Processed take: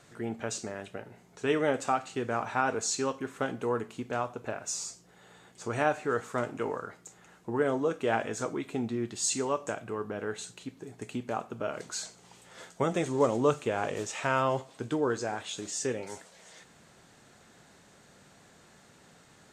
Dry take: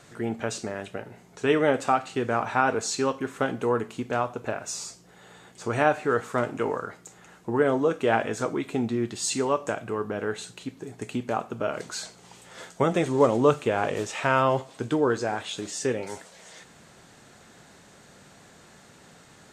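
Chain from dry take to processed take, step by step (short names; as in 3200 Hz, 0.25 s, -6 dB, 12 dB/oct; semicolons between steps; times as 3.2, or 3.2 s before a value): dynamic EQ 6900 Hz, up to +6 dB, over -49 dBFS, Q 1.5; gain -5.5 dB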